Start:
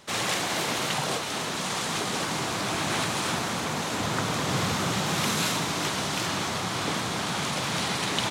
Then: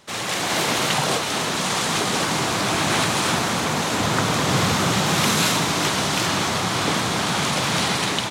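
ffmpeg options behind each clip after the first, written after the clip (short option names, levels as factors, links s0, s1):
-af "dynaudnorm=f=270:g=3:m=2.24"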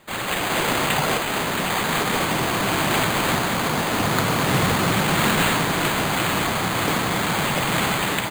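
-af "acrusher=samples=8:mix=1:aa=0.000001"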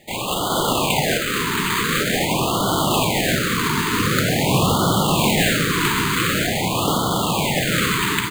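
-af "afftfilt=real='re*(1-between(b*sr/1024,620*pow(2100/620,0.5+0.5*sin(2*PI*0.46*pts/sr))/1.41,620*pow(2100/620,0.5+0.5*sin(2*PI*0.46*pts/sr))*1.41))':imag='im*(1-between(b*sr/1024,620*pow(2100/620,0.5+0.5*sin(2*PI*0.46*pts/sr))/1.41,620*pow(2100/620,0.5+0.5*sin(2*PI*0.46*pts/sr))*1.41))':win_size=1024:overlap=0.75,volume=1.41"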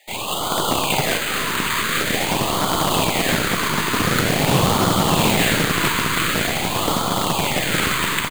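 -filter_complex "[0:a]aecho=1:1:334|668|1002|1336|1670|2004:0.237|0.128|0.0691|0.0373|0.0202|0.0109,acrossover=split=650|1000[s0][s1][s2];[s0]acrusher=bits=4:dc=4:mix=0:aa=0.000001[s3];[s3][s1][s2]amix=inputs=3:normalize=0"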